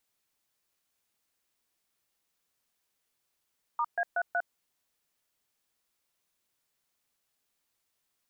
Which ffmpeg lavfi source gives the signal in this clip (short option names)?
-f lavfi -i "aevalsrc='0.0376*clip(min(mod(t,0.186),0.056-mod(t,0.186))/0.002,0,1)*(eq(floor(t/0.186),0)*(sin(2*PI*941*mod(t,0.186))+sin(2*PI*1209*mod(t,0.186)))+eq(floor(t/0.186),1)*(sin(2*PI*697*mod(t,0.186))+sin(2*PI*1633*mod(t,0.186)))+eq(floor(t/0.186),2)*(sin(2*PI*697*mod(t,0.186))+sin(2*PI*1477*mod(t,0.186)))+eq(floor(t/0.186),3)*(sin(2*PI*697*mod(t,0.186))+sin(2*PI*1477*mod(t,0.186))))':d=0.744:s=44100"